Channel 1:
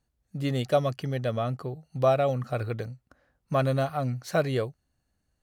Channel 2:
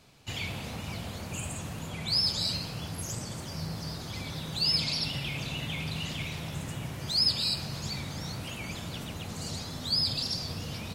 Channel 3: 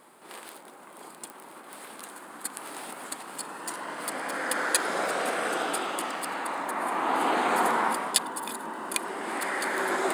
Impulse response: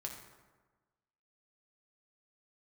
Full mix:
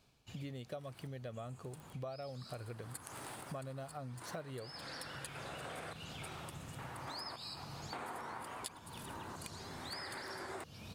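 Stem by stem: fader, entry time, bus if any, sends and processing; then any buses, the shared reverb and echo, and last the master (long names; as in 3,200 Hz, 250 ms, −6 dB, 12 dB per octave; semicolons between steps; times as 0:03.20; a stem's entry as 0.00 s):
−6.0 dB, 0.00 s, no send, no processing
−12.0 dB, 0.00 s, send −11.5 dB, notch filter 2,000 Hz; automatic ducking −10 dB, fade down 0.40 s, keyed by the first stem
−5.5 dB, 0.50 s, no send, sample-and-hold tremolo, depth 90%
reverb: on, RT60 1.3 s, pre-delay 4 ms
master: downward compressor 6 to 1, threshold −43 dBFS, peak gain reduction 18 dB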